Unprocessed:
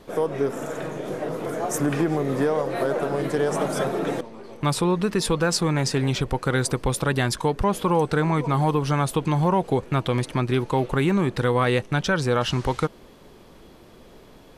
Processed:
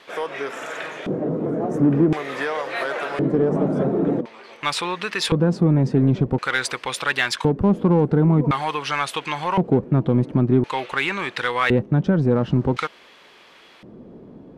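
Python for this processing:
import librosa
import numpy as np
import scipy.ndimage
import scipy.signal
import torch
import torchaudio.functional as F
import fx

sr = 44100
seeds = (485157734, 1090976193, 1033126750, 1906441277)

p1 = fx.filter_lfo_bandpass(x, sr, shape='square', hz=0.47, low_hz=220.0, high_hz=2400.0, q=1.2)
p2 = 10.0 ** (-30.0 / 20.0) * np.tanh(p1 / 10.0 ** (-30.0 / 20.0))
p3 = p1 + F.gain(torch.from_numpy(p2), -5.5).numpy()
y = F.gain(torch.from_numpy(p3), 7.5).numpy()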